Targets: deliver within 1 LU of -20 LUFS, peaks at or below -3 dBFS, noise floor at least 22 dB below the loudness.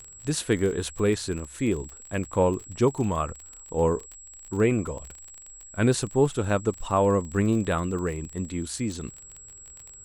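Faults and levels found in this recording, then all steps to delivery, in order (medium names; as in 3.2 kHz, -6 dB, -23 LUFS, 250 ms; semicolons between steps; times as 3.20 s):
tick rate 31 per s; steady tone 7.7 kHz; tone level -44 dBFS; loudness -26.5 LUFS; peak level -10.0 dBFS; loudness target -20.0 LUFS
-> de-click; band-stop 7.7 kHz, Q 30; trim +6.5 dB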